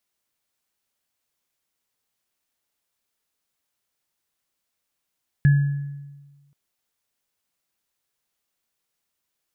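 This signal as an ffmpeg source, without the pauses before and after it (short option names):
-f lavfi -i "aevalsrc='0.299*pow(10,-3*t/1.35)*sin(2*PI*142*t)+0.0531*pow(10,-3*t/0.77)*sin(2*PI*1700*t)':d=1.08:s=44100"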